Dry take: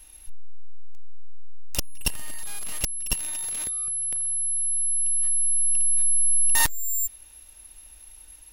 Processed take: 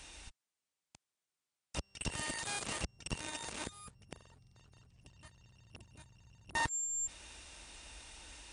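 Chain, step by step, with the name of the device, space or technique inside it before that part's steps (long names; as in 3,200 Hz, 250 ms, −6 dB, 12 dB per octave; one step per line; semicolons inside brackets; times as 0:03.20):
podcast mastering chain (high-pass filter 66 Hz 12 dB per octave; de-essing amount 75%; downward compressor 3 to 1, threshold −31 dBFS, peak gain reduction 7 dB; brickwall limiter −29.5 dBFS, peak gain reduction 11 dB; level +7 dB; MP3 96 kbit/s 22,050 Hz)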